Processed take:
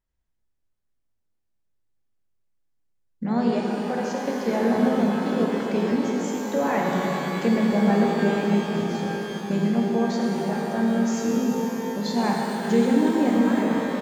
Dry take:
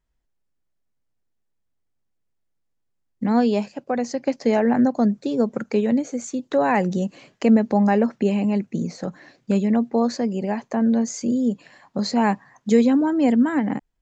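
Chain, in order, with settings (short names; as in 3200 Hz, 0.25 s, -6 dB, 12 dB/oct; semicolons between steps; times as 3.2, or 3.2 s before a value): harmoniser -3 st -8 dB; shimmer reverb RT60 3.8 s, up +12 st, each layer -8 dB, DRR -2 dB; gain -7 dB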